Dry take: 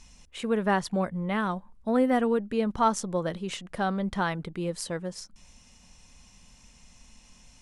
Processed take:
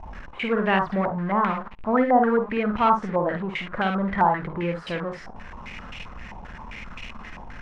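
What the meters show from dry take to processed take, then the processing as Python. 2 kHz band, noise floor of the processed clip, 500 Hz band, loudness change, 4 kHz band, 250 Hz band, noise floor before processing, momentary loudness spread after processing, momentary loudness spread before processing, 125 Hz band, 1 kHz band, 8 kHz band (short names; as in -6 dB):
+6.5 dB, -41 dBFS, +4.0 dB, +5.0 dB, +2.0 dB, +3.0 dB, -57 dBFS, 20 LU, 11 LU, +3.5 dB, +7.5 dB, under -15 dB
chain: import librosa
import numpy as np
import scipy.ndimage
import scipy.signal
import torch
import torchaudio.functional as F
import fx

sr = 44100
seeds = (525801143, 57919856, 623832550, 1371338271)

y = x + 0.5 * 10.0 ** (-34.0 / 20.0) * np.sign(x)
y = fx.room_early_taps(y, sr, ms=(52, 71), db=(-6.0, -12.5))
y = fx.filter_held_lowpass(y, sr, hz=7.6, low_hz=870.0, high_hz=2600.0)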